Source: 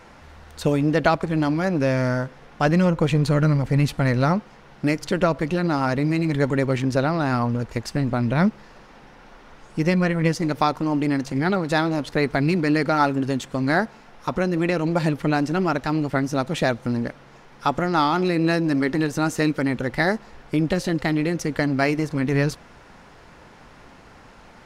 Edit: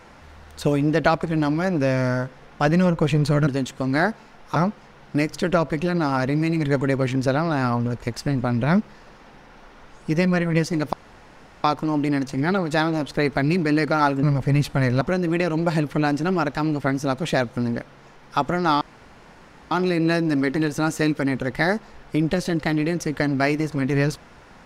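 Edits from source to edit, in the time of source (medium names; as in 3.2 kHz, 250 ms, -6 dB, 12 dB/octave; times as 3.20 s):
3.47–4.25 s: swap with 13.21–14.30 s
10.62 s: insert room tone 0.71 s
18.10 s: insert room tone 0.90 s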